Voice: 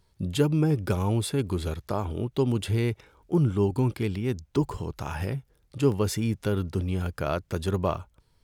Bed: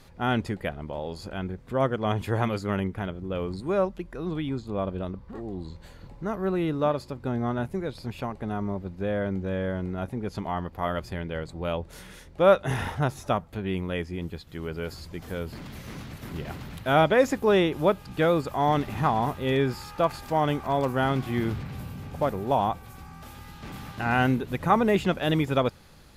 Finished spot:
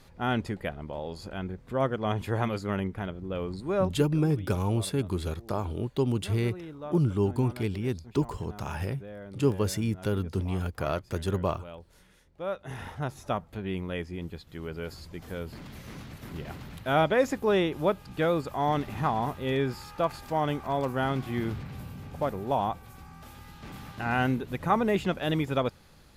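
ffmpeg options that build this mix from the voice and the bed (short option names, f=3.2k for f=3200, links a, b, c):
-filter_complex "[0:a]adelay=3600,volume=-2dB[a];[1:a]volume=9dB,afade=t=out:st=3.98:d=0.32:silence=0.237137,afade=t=in:st=12.54:d=0.91:silence=0.266073[b];[a][b]amix=inputs=2:normalize=0"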